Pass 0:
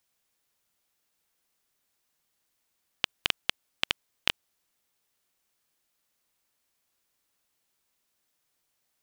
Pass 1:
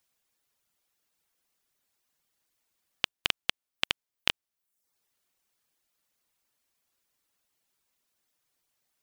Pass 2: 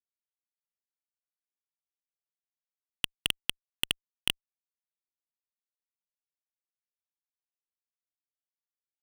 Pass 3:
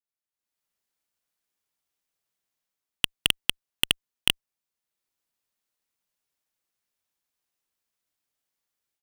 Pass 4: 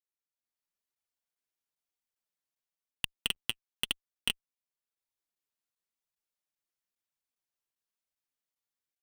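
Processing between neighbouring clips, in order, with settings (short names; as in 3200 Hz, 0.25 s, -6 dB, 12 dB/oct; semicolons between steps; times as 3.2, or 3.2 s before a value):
reverb removal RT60 0.61 s
fuzz box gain 34 dB, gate -36 dBFS
AGC gain up to 14.5 dB; gain -3 dB
flange 0.98 Hz, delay 0.8 ms, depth 8.7 ms, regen +27%; crackling interface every 0.40 s, samples 512, zero, from 0.95; gain -5.5 dB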